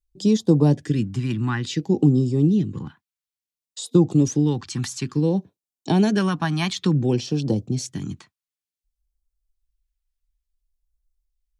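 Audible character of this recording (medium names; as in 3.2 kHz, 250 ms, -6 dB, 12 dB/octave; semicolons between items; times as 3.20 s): phasing stages 2, 0.57 Hz, lowest notch 470–1800 Hz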